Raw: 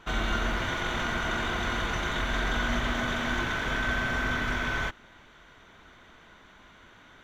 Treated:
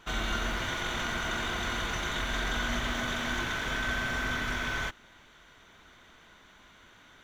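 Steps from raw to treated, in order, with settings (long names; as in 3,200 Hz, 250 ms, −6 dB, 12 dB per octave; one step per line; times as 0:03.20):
high-shelf EQ 3,500 Hz +8.5 dB
level −4 dB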